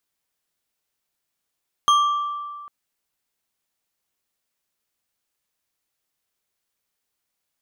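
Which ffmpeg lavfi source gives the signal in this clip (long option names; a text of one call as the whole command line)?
ffmpeg -f lavfi -i "aevalsrc='0.251*pow(10,-3*t/1.9)*sin(2*PI*1170*t)+0.1*pow(10,-3*t/0.934)*sin(2*PI*3225.7*t)+0.0398*pow(10,-3*t/0.583)*sin(2*PI*6322.7*t)+0.0158*pow(10,-3*t/0.41)*sin(2*PI*10451.6*t)+0.00631*pow(10,-3*t/0.31)*sin(2*PI*15607.8*t)':duration=0.8:sample_rate=44100" out.wav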